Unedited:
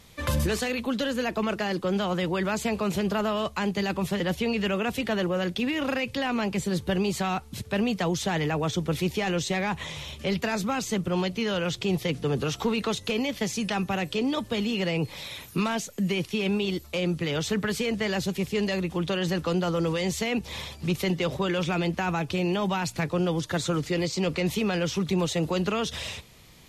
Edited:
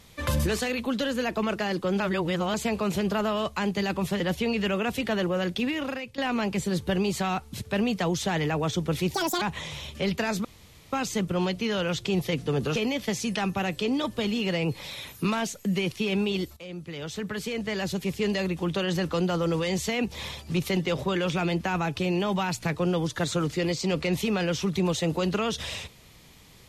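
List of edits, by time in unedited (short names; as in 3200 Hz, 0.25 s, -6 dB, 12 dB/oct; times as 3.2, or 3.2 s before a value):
2–2.54 reverse
5.65–6.18 fade out linear, to -14.5 dB
9.14–9.66 speed 188%
10.69 insert room tone 0.48 s
12.52–13.09 cut
16.9–18.57 fade in, from -15 dB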